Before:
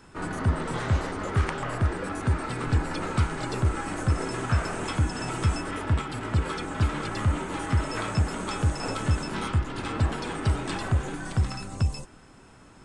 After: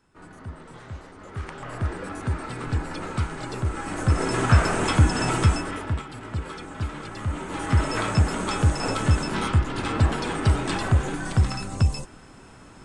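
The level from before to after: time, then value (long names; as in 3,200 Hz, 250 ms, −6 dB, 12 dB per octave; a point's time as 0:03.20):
0:01.12 −13.5 dB
0:01.86 −2 dB
0:03.68 −2 dB
0:04.41 +7.5 dB
0:05.34 +7.5 dB
0:06.08 −5 dB
0:07.20 −5 dB
0:07.79 +4.5 dB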